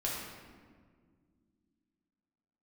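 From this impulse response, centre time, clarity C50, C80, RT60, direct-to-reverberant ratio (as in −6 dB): 87 ms, −0.5 dB, 2.0 dB, 1.8 s, −5.0 dB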